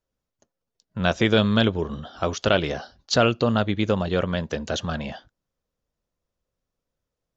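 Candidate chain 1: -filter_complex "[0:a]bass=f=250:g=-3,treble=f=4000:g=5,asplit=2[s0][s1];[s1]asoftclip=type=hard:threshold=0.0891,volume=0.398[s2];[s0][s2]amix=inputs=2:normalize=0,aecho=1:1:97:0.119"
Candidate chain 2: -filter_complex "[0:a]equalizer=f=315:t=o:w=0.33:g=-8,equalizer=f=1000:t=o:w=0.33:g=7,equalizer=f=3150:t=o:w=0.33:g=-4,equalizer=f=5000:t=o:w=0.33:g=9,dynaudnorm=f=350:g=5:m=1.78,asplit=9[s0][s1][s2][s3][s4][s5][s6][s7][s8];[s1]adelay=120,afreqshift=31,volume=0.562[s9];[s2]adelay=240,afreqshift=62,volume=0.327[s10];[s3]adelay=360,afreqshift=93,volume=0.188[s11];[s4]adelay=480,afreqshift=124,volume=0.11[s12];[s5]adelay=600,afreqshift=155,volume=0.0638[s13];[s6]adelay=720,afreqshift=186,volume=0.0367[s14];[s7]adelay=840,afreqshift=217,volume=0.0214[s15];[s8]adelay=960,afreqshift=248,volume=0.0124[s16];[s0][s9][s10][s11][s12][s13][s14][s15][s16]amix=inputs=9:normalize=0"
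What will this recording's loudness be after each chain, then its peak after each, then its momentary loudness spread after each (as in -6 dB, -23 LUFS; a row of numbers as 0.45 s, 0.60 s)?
-22.0 LUFS, -20.0 LUFS; -3.0 dBFS, -1.0 dBFS; 12 LU, 10 LU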